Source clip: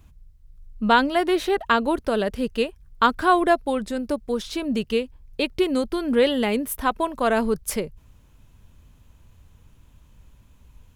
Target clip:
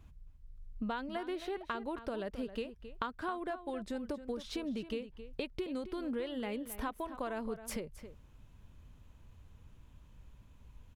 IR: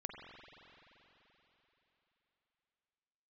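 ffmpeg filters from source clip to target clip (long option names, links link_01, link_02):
-filter_complex "[0:a]highshelf=frequency=6000:gain=-8.5,acompressor=threshold=-30dB:ratio=10,asplit=2[link_01][link_02];[link_02]adelay=268.2,volume=-12dB,highshelf=frequency=4000:gain=-6.04[link_03];[link_01][link_03]amix=inputs=2:normalize=0,volume=-5dB"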